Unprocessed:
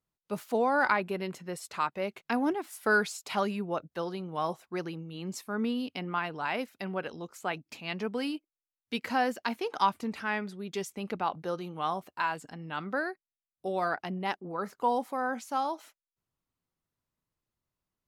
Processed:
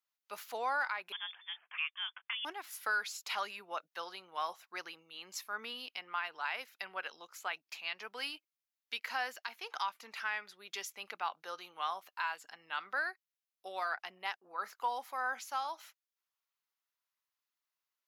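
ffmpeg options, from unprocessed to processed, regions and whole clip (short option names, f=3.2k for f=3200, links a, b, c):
-filter_complex "[0:a]asettb=1/sr,asplit=3[a][b][c];[a]atrim=end=1.124[d];[b]atrim=start=1.12:end=2.45,asetpts=PTS-STARTPTS,afade=t=in:d=0.004:c=qsin,afade=t=out:st=1.326:d=0.004:c=qsin,highpass=f=1k:p=1,lowpass=f=3.1k:t=q:w=0.5098,lowpass=f=3.1k:t=q:w=0.6013,lowpass=f=3.1k:t=q:w=0.9,lowpass=f=3.1k:t=q:w=2.563,afreqshift=-3700[e];[c]atrim=start=2.446[f];[d][e]acrossfade=d=0.004:c1=hsin:c2=qsin[g];[g][f]acrossfade=d=0.004:c1=qsin:c2=hsin,highpass=1.2k,equalizer=f=8.5k:t=o:w=0.24:g=-13,alimiter=level_in=2dB:limit=-24dB:level=0:latency=1:release=327,volume=-2dB,volume=1.5dB"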